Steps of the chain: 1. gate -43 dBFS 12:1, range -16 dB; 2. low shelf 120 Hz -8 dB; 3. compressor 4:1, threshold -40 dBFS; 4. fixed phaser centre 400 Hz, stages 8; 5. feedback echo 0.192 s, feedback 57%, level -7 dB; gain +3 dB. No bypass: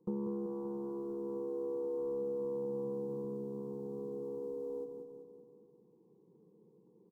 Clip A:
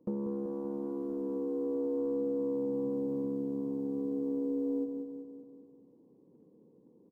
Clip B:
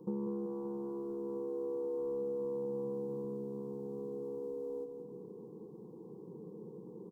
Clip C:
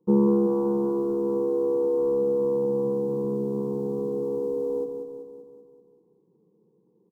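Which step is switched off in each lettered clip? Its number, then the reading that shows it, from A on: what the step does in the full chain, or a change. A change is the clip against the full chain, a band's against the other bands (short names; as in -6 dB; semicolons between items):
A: 4, 250 Hz band +7.0 dB; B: 1, momentary loudness spread change +4 LU; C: 3, mean gain reduction 13.5 dB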